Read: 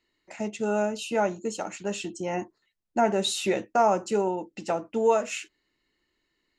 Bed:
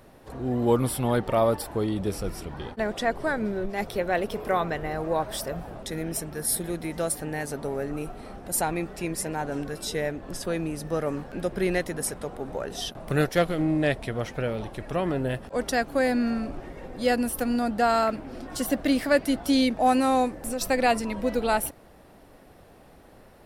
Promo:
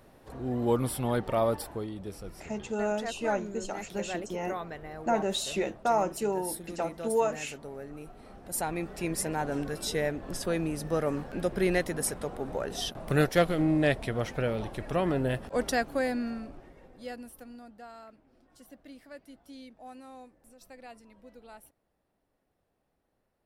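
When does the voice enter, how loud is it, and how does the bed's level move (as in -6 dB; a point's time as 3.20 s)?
2.10 s, -4.5 dB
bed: 1.64 s -4.5 dB
1.91 s -11.5 dB
8.02 s -11.5 dB
9.13 s -1 dB
15.60 s -1 dB
17.93 s -26 dB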